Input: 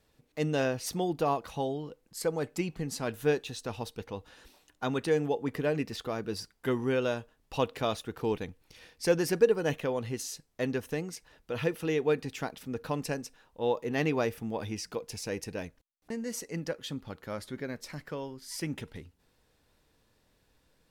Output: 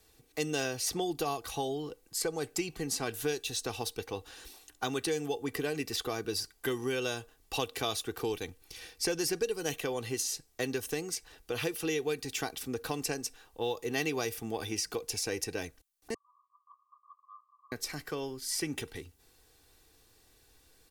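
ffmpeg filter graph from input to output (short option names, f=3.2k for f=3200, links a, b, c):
-filter_complex "[0:a]asettb=1/sr,asplit=3[a][b][c];[a]atrim=end=16.144[d];[b]atrim=start=16.14:end=17.72,asetpts=PTS-STARTPTS,afade=t=in:d=0.004:c=qsin,afade=t=out:st=1.576:d=0.004:c=qsin,asuperpass=centerf=1100:order=20:qfactor=4.3,acompressor=threshold=-56dB:ratio=2:attack=3.2:release=140:knee=1:detection=peak[e];[c]atrim=start=17.716[f];[d][e]acrossfade=d=0.004:c1=hsin:c2=qsin[g];[g][f]acrossfade=d=0.004:c1=qsin:c2=hsin,highshelf=f=4.3k:g=11.5,aecho=1:1:2.6:0.53,acrossover=split=150|3000|7900[h][i][j][k];[h]acompressor=threshold=-50dB:ratio=4[l];[i]acompressor=threshold=-33dB:ratio=4[m];[j]acompressor=threshold=-36dB:ratio=4[n];[k]acompressor=threshold=-43dB:ratio=4[o];[l][m][n][o]amix=inputs=4:normalize=0,volume=1.5dB"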